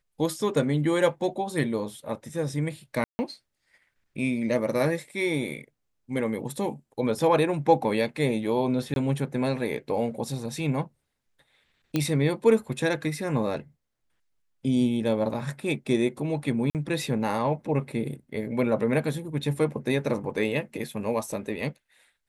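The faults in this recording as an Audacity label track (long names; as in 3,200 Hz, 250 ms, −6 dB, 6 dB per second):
3.040000	3.190000	drop-out 150 ms
8.940000	8.960000	drop-out 22 ms
11.960000	11.960000	click −12 dBFS
16.700000	16.750000	drop-out 48 ms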